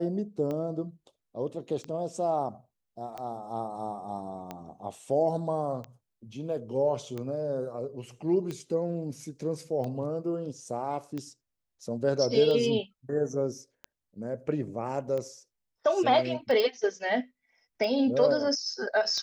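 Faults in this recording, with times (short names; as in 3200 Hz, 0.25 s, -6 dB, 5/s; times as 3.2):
tick 45 rpm -23 dBFS
16.6 pop -16 dBFS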